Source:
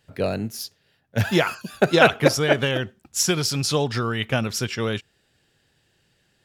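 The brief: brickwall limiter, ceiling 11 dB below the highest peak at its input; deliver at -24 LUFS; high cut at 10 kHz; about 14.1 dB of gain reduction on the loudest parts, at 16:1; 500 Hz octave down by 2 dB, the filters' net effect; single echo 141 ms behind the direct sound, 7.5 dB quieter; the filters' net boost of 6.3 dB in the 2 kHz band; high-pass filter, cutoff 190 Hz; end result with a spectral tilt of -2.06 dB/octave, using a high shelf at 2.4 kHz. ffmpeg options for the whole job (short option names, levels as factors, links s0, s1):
-af "highpass=190,lowpass=10000,equalizer=f=500:t=o:g=-3,equalizer=f=2000:t=o:g=5,highshelf=f=2400:g=8,acompressor=threshold=0.112:ratio=16,alimiter=limit=0.178:level=0:latency=1,aecho=1:1:141:0.422,volume=1.26"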